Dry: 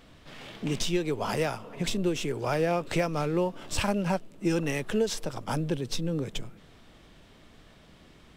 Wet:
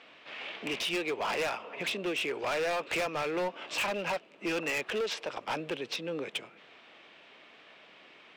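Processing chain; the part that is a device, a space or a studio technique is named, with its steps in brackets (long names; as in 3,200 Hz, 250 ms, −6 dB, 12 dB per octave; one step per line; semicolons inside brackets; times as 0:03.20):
megaphone (band-pass filter 480–3,700 Hz; parametric band 2,500 Hz +8 dB 0.58 octaves; hard clipping −30.5 dBFS, distortion −8 dB)
level +2.5 dB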